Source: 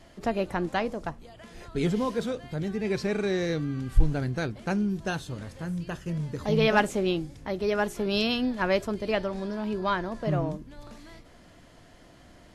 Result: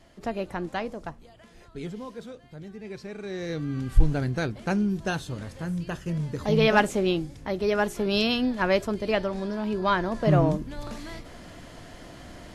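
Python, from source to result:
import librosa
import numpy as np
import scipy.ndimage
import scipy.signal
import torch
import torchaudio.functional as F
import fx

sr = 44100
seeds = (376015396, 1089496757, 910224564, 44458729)

y = fx.gain(x, sr, db=fx.line((1.24, -3.0), (1.95, -10.5), (3.16, -10.5), (3.77, 2.0), (9.72, 2.0), (10.63, 9.0)))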